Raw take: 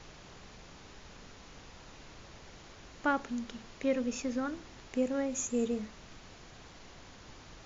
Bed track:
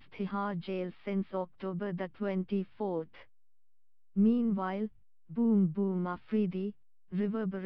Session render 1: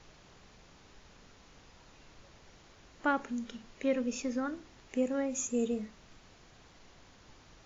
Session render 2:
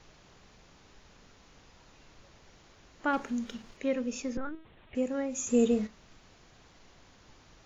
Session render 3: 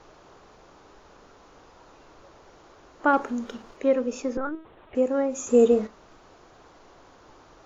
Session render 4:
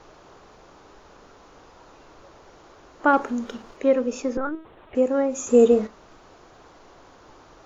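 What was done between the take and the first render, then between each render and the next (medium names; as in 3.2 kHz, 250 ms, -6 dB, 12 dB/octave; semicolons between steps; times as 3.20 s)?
noise print and reduce 6 dB
3.13–3.77 s: waveshaping leveller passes 1; 4.37–4.95 s: LPC vocoder at 8 kHz pitch kept; 5.47–5.87 s: gain +7 dB
high-order bell 650 Hz +10 dB 2.6 oct
trim +2.5 dB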